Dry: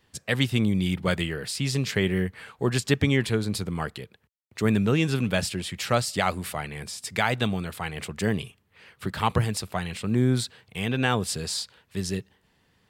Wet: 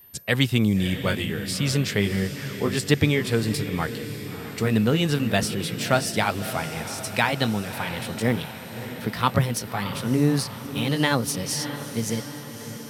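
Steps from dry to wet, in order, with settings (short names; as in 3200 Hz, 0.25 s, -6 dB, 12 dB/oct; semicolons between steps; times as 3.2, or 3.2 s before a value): gliding pitch shift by +3 st starting unshifted; whine 13000 Hz -51 dBFS; diffused feedback echo 0.621 s, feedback 60%, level -11 dB; gain +3 dB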